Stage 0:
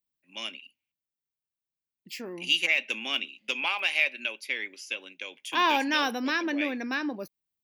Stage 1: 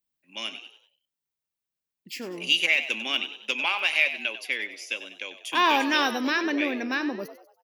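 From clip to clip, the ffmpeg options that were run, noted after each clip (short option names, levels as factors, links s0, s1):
-filter_complex "[0:a]asplit=5[s0][s1][s2][s3][s4];[s1]adelay=96,afreqshift=76,volume=0.237[s5];[s2]adelay=192,afreqshift=152,volume=0.102[s6];[s3]adelay=288,afreqshift=228,volume=0.0437[s7];[s4]adelay=384,afreqshift=304,volume=0.0188[s8];[s0][s5][s6][s7][s8]amix=inputs=5:normalize=0,volume=1.33"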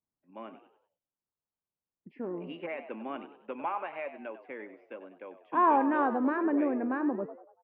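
-af "lowpass=f=1200:w=0.5412,lowpass=f=1200:w=1.3066"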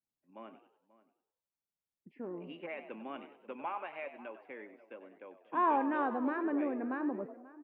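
-filter_complex "[0:a]asplit=2[s0][s1];[s1]adelay=536.4,volume=0.126,highshelf=f=4000:g=-12.1[s2];[s0][s2]amix=inputs=2:normalize=0,adynamicequalizer=threshold=0.00501:dfrequency=2300:dqfactor=0.7:tfrequency=2300:tqfactor=0.7:attack=5:release=100:ratio=0.375:range=3:mode=boostabove:tftype=highshelf,volume=0.531"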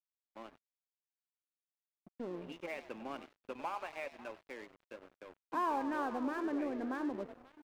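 -af "acompressor=threshold=0.0126:ratio=2,aeval=exprs='sgn(val(0))*max(abs(val(0))-0.00211,0)':c=same,volume=1.33"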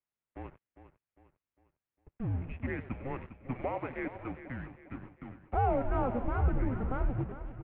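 -af "lowshelf=f=230:t=q:w=3:g=-13.5,aecho=1:1:403|806|1209|1612:0.237|0.102|0.0438|0.0189,highpass=f=190:t=q:w=0.5412,highpass=f=190:t=q:w=1.307,lowpass=f=2900:t=q:w=0.5176,lowpass=f=2900:t=q:w=0.7071,lowpass=f=2900:t=q:w=1.932,afreqshift=-260,volume=1.58"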